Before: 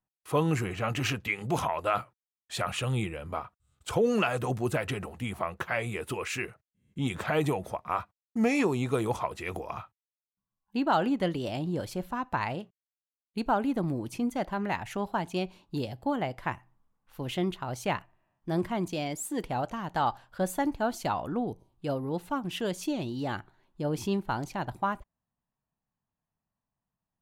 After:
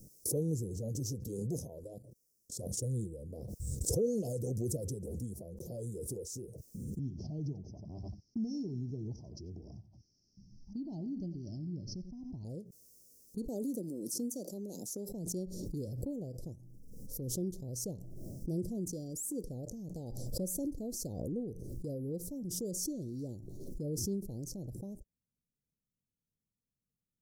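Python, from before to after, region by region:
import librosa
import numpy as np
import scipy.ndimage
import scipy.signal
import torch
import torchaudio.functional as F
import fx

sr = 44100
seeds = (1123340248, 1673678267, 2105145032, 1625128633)

y = fx.chain(x, sr, fx.level_steps(step_db=11),
    fx.upward_expand(threshold_db=-56.0, expansion=1.5), at=(1.73, 2.83))
y = fx.chain(y, sr, fx.steep_lowpass(hz=5600.0, slope=72),
    fx.fixed_phaser(hz=2500.0, stages=8),
    fx.echo_single(ms=91, db=-14.5), at=(6.99, 12.45))
y = fx.chain(y, sr, fx.highpass(hz=210.0, slope=24),
    fx.high_shelf(hz=2300.0, db=9.5), at=(13.48, 15.09))
y = scipy.signal.sosfilt(scipy.signal.cheby1(4, 1.0, [510.0, 5400.0], 'bandstop', fs=sr, output='sos'), y)
y = fx.dynamic_eq(y, sr, hz=290.0, q=0.87, threshold_db=-43.0, ratio=4.0, max_db=-4)
y = fx.pre_swell(y, sr, db_per_s=25.0)
y = F.gain(torch.from_numpy(y), -4.0).numpy()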